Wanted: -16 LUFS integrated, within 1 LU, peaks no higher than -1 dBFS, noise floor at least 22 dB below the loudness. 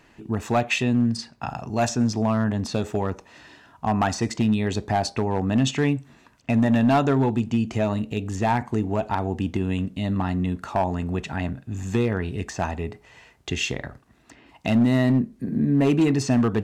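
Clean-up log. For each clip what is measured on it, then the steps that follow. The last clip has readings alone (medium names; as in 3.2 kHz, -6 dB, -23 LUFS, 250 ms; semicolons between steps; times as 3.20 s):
clipped samples 0.8%; clipping level -13.5 dBFS; loudness -24.0 LUFS; peak level -13.5 dBFS; loudness target -16.0 LUFS
-> clip repair -13.5 dBFS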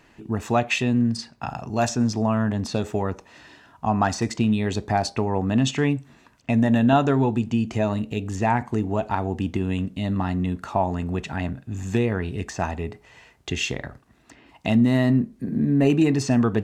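clipped samples 0.0%; loudness -23.5 LUFS; peak level -6.5 dBFS; loudness target -16.0 LUFS
-> trim +7.5 dB; peak limiter -1 dBFS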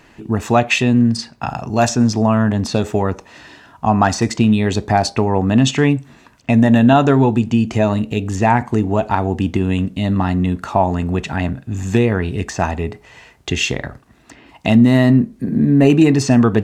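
loudness -16.0 LUFS; peak level -1.0 dBFS; noise floor -49 dBFS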